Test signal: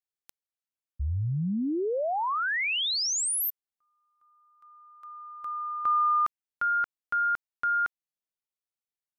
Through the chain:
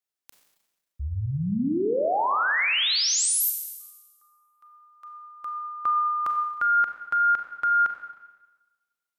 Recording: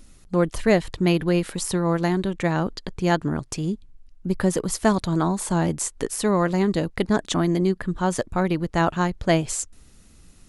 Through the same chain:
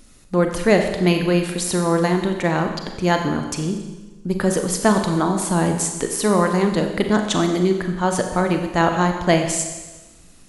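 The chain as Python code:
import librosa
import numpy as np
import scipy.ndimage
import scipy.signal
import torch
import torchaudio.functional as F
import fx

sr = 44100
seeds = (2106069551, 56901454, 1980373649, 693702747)

y = fx.low_shelf(x, sr, hz=140.0, db=-6.5)
y = fx.rev_schroeder(y, sr, rt60_s=1.2, comb_ms=30, drr_db=4.5)
y = y * librosa.db_to_amplitude(3.5)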